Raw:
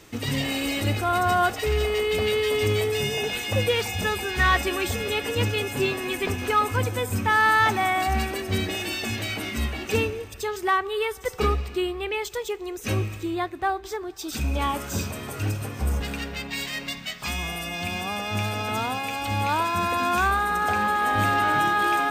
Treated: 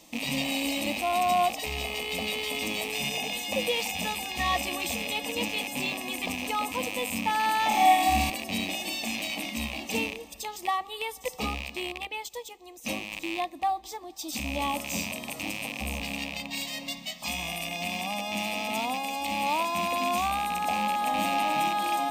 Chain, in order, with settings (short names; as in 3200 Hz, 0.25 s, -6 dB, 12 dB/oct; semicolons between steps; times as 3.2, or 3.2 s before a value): rattling part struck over -35 dBFS, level -17 dBFS; low shelf 97 Hz -11 dB; fixed phaser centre 400 Hz, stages 6; 7.68–8.3 flutter echo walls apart 4.8 m, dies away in 0.94 s; 12.07–13.12 upward expander 1.5:1, over -43 dBFS